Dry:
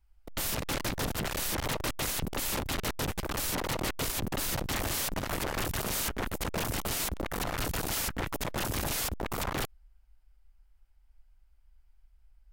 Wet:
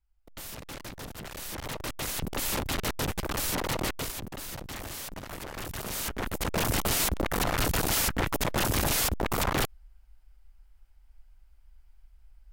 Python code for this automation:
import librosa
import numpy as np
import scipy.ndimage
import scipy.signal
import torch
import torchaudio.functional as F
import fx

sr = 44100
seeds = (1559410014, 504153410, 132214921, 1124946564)

y = fx.gain(x, sr, db=fx.line((1.14, -9.0), (2.45, 2.0), (3.85, 2.0), (4.29, -7.0), (5.47, -7.0), (6.71, 5.5)))